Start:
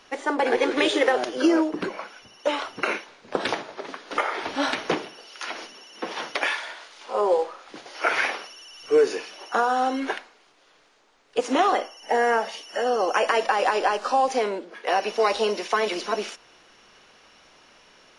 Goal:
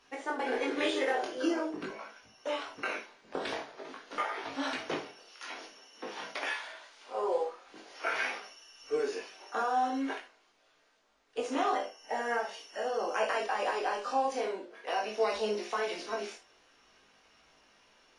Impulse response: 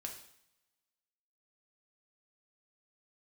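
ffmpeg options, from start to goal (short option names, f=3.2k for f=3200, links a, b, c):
-filter_complex "[0:a]flanger=delay=18:depth=4.4:speed=0.46[a];[1:a]atrim=start_sample=2205,atrim=end_sample=3528[b];[a][b]afir=irnorm=-1:irlink=0,volume=-3.5dB"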